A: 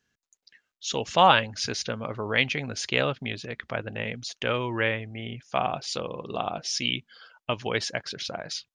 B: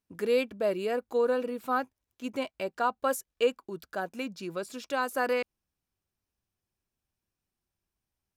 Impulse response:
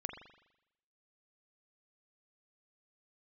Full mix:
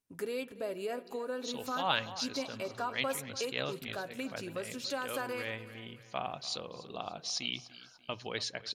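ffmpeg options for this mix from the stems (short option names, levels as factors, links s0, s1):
-filter_complex "[0:a]equalizer=f=4100:w=5.2:g=12,bandreject=f=60:t=h:w=6,bandreject=f=120:t=h:w=6,adelay=600,volume=0.251,asplit=3[s0][s1][s2];[s1]volume=0.158[s3];[s2]volume=0.141[s4];[1:a]acompressor=threshold=0.02:ratio=2,aecho=1:1:7.3:0.35,volume=0.531,asplit=4[s5][s6][s7][s8];[s6]volume=0.335[s9];[s7]volume=0.188[s10];[s8]apad=whole_len=412061[s11];[s0][s11]sidechaincompress=threshold=0.00447:ratio=8:attack=37:release=151[s12];[2:a]atrim=start_sample=2205[s13];[s3][s9]amix=inputs=2:normalize=0[s14];[s14][s13]afir=irnorm=-1:irlink=0[s15];[s4][s10]amix=inputs=2:normalize=0,aecho=0:1:292|584|876|1168|1460|1752:1|0.4|0.16|0.064|0.0256|0.0102[s16];[s12][s5][s15][s16]amix=inputs=4:normalize=0,equalizer=f=10000:t=o:w=1.4:g=6"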